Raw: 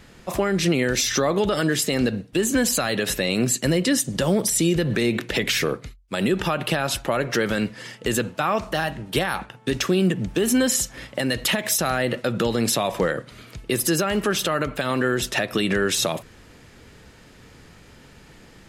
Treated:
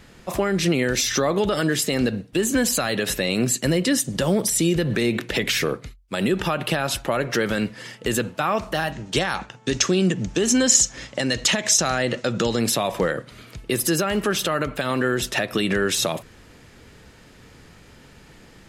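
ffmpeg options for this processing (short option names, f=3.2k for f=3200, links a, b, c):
-filter_complex "[0:a]asettb=1/sr,asplit=3[a][b][c];[a]atrim=end=8.924[d];[b]atrim=start=8.92:end=12.6,asetpts=PTS-STARTPTS,afade=t=in:d=0.004:c=qsin,afade=t=out:st=3.676:d=0.004:c=qsin,lowpass=f=6.6k:t=q:w=3.2[e];[c]atrim=start=12.596[f];[d][e]acrossfade=d=0.004:c1=hsin:c2=qsin[g];[g][f]acrossfade=d=0.004:c1=qsin:c2=hsin"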